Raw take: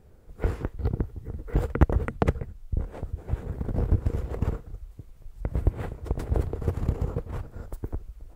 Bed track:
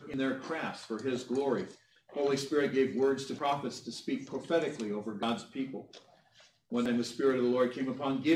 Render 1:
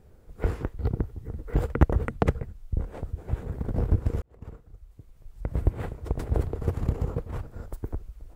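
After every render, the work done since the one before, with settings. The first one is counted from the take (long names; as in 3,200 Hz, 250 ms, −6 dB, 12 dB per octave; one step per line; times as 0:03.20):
0:04.22–0:05.60: fade in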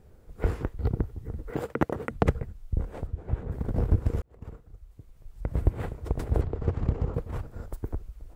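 0:01.52–0:02.11: high-pass filter 200 Hz
0:03.06–0:03.50: low-pass filter 2,600 Hz → 1,900 Hz 6 dB per octave
0:06.41–0:07.14: high-frequency loss of the air 110 metres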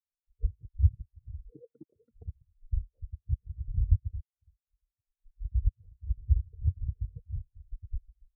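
downward compressor 4 to 1, threshold −30 dBFS, peak gain reduction 13 dB
every bin expanded away from the loudest bin 4 to 1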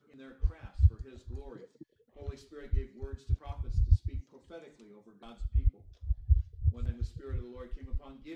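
mix in bed track −19 dB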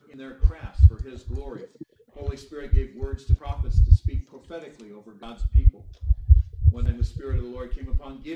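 level +10.5 dB
brickwall limiter −3 dBFS, peak gain reduction 2.5 dB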